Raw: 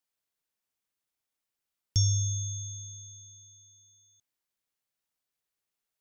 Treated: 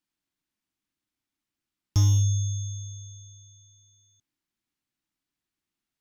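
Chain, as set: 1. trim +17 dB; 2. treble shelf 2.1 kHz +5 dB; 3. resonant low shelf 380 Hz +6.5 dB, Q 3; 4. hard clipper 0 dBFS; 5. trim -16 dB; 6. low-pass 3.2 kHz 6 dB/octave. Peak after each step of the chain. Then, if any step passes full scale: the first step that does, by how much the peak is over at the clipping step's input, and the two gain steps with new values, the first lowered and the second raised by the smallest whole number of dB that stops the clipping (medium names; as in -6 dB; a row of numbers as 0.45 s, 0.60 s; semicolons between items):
+2.5 dBFS, +5.0 dBFS, +9.0 dBFS, 0.0 dBFS, -16.0 dBFS, -16.0 dBFS; step 1, 9.0 dB; step 1 +8 dB, step 5 -7 dB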